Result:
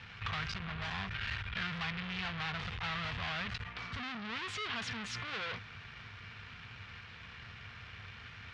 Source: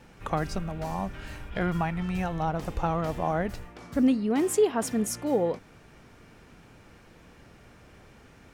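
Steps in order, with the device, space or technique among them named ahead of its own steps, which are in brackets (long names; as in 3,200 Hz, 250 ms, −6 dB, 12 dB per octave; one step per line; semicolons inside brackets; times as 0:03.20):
scooped metal amplifier (tube saturation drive 41 dB, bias 0.6; loudspeaker in its box 87–3,900 Hz, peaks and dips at 100 Hz +9 dB, 240 Hz +6 dB, 580 Hz −9 dB, 830 Hz −6 dB; guitar amp tone stack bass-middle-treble 10-0-10)
level +17 dB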